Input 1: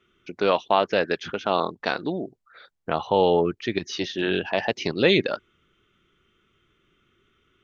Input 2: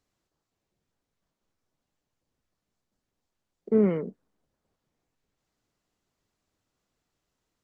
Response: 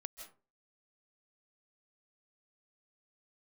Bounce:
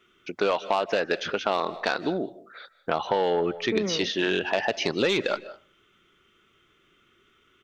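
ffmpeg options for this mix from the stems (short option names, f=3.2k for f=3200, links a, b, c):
-filter_complex "[0:a]asoftclip=type=tanh:threshold=-11.5dB,volume=2.5dB,asplit=3[a][b][c];[b]volume=-7dB[d];[c]volume=-23.5dB[e];[1:a]volume=-2.5dB,asplit=2[f][g];[g]volume=-6dB[h];[2:a]atrim=start_sample=2205[i];[d][h]amix=inputs=2:normalize=0[j];[j][i]afir=irnorm=-1:irlink=0[k];[e]aecho=0:1:202:1[l];[a][f][k][l]amix=inputs=4:normalize=0,lowshelf=f=220:g=-9.5,acompressor=threshold=-20dB:ratio=6"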